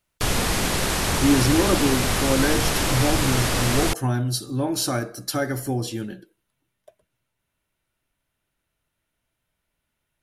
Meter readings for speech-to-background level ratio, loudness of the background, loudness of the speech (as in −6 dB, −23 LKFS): −2.0 dB, −22.5 LKFS, −24.5 LKFS